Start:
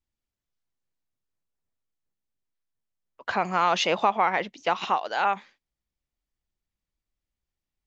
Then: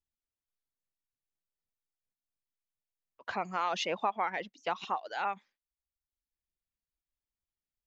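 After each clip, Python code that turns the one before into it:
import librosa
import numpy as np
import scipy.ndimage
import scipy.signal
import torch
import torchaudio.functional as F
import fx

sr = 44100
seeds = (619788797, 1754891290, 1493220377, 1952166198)

y = fx.dereverb_blind(x, sr, rt60_s=0.86)
y = y * 10.0 ** (-8.5 / 20.0)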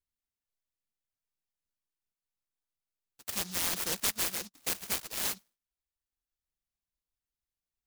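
y = fx.noise_mod_delay(x, sr, seeds[0], noise_hz=5000.0, depth_ms=0.5)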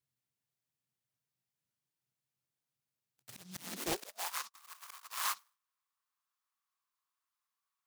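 y = fx.filter_sweep_highpass(x, sr, from_hz=130.0, to_hz=1100.0, start_s=3.53, end_s=4.36, q=6.4)
y = fx.auto_swell(y, sr, attack_ms=613.0)
y = fx.doppler_dist(y, sr, depth_ms=0.57)
y = y * 10.0 ** (1.5 / 20.0)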